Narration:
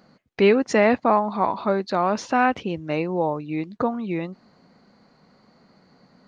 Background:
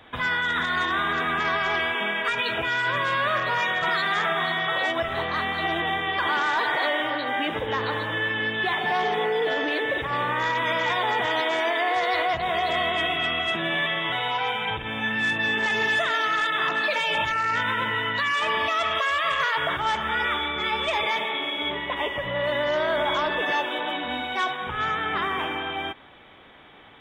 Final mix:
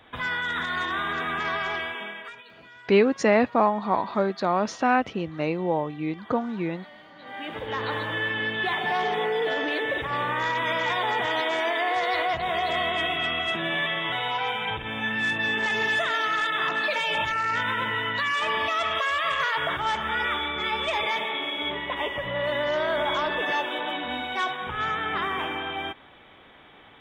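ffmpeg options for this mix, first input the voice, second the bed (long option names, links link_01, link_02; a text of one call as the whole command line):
ffmpeg -i stem1.wav -i stem2.wav -filter_complex "[0:a]adelay=2500,volume=-2dB[link_01];[1:a]volume=18.5dB,afade=type=out:start_time=1.61:duration=0.82:silence=0.1,afade=type=in:start_time=7.15:duration=0.78:silence=0.0794328[link_02];[link_01][link_02]amix=inputs=2:normalize=0" out.wav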